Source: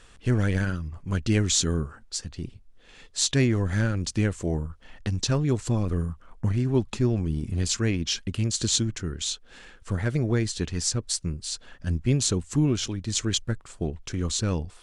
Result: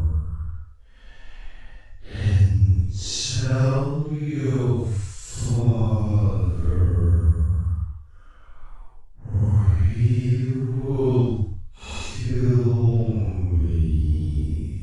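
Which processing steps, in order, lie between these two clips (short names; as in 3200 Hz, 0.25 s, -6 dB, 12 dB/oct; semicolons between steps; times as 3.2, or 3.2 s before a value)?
Paulstretch 5.2×, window 0.10 s, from 4.63; resonant low shelf 120 Hz +8.5 dB, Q 1.5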